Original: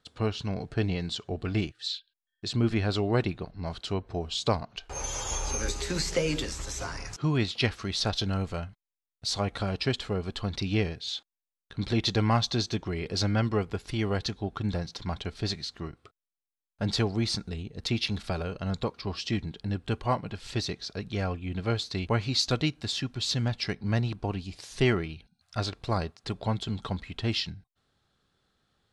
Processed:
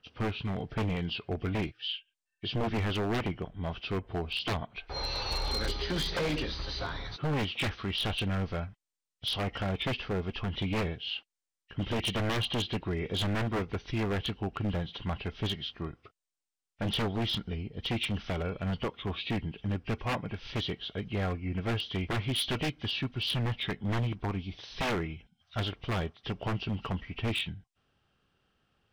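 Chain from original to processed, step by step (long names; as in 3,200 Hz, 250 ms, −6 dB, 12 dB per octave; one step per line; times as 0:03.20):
hearing-aid frequency compression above 1,800 Hz 1.5 to 1
wave folding −24.5 dBFS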